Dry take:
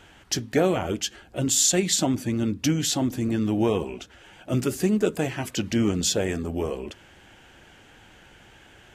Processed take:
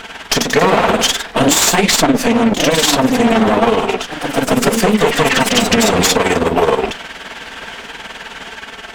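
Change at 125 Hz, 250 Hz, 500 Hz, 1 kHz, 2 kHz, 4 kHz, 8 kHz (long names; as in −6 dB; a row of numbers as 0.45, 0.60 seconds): +5.5, +9.5, +13.0, +20.0, +19.0, +14.0, +8.5 decibels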